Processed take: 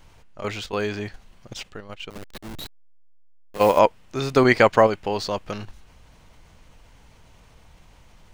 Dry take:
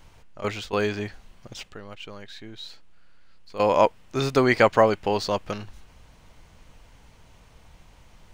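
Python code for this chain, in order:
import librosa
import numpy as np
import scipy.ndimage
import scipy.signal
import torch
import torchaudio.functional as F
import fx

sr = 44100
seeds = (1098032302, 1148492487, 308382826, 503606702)

p1 = fx.delta_hold(x, sr, step_db=-33.5, at=(2.1, 3.79))
p2 = fx.level_steps(p1, sr, step_db=20)
p3 = p1 + (p2 * librosa.db_to_amplitude(3.0))
y = p3 * librosa.db_to_amplitude(-3.0)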